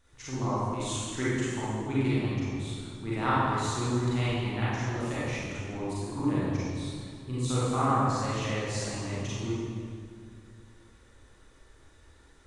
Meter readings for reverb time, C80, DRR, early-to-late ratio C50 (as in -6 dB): 2.1 s, -2.0 dB, -10.0 dB, -6.0 dB